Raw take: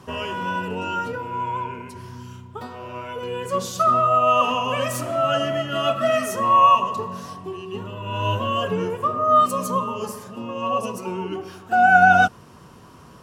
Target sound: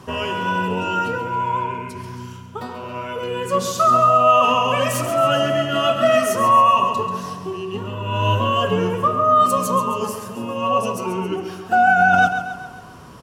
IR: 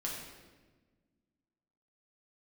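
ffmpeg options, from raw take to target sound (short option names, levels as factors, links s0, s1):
-filter_complex "[0:a]alimiter=limit=0.266:level=0:latency=1:release=26,asplit=2[s0][s1];[s1]aecho=0:1:136|272|408|544|680|816:0.335|0.171|0.0871|0.0444|0.0227|0.0116[s2];[s0][s2]amix=inputs=2:normalize=0,volume=1.58"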